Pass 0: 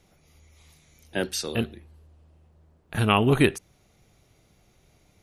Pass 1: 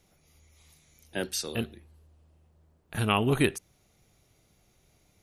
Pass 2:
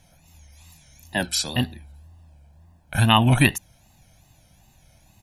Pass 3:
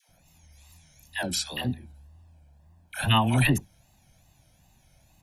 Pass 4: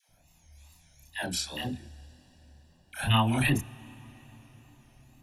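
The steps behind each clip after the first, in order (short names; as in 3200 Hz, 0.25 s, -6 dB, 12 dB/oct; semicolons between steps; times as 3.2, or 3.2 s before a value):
high shelf 5900 Hz +6.5 dB; gain -5 dB
comb 1.2 ms, depth 85%; wow and flutter 150 cents; gain +6.5 dB
dispersion lows, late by 91 ms, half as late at 650 Hz; gain -5 dB
chorus voices 4, 0.56 Hz, delay 29 ms, depth 2.2 ms; on a send at -20.5 dB: reverb RT60 5.2 s, pre-delay 9 ms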